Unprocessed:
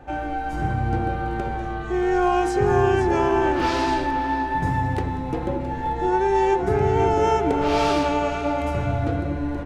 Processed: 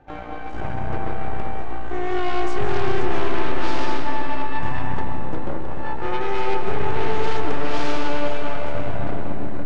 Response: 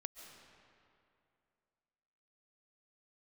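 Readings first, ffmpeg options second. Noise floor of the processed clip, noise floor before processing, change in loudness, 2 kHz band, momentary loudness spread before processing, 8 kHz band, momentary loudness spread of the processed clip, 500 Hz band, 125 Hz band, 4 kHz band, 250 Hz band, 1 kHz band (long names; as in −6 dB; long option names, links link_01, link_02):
−26 dBFS, −28 dBFS, −5.0 dB, −1.5 dB, 8 LU, −6.0 dB, 7 LU, −5.5 dB, −4.5 dB, 0.0 dB, −5.0 dB, −5.0 dB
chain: -filter_complex "[0:a]aeval=exprs='0.422*(cos(1*acos(clip(val(0)/0.422,-1,1)))-cos(1*PI/2))+0.0944*(cos(8*acos(clip(val(0)/0.422,-1,1)))-cos(8*PI/2))':channel_layout=same,lowpass=6000[link_01];[1:a]atrim=start_sample=2205[link_02];[link_01][link_02]afir=irnorm=-1:irlink=0,volume=-3dB"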